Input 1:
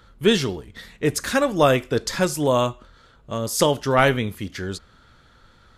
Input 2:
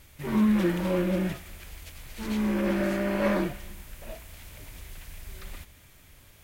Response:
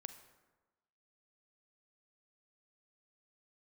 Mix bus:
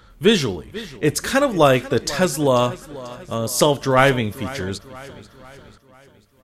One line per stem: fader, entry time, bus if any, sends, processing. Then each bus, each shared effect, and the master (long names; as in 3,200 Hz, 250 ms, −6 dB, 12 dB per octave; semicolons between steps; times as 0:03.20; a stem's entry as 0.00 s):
+2.5 dB, 0.00 s, no send, echo send −17.5 dB, no processing
−8.5 dB, 0.10 s, no send, no echo send, downward compressor, threshold −29 dBFS, peak gain reduction 10 dB; automatic ducking −15 dB, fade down 1.15 s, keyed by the first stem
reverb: not used
echo: repeating echo 491 ms, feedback 50%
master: no processing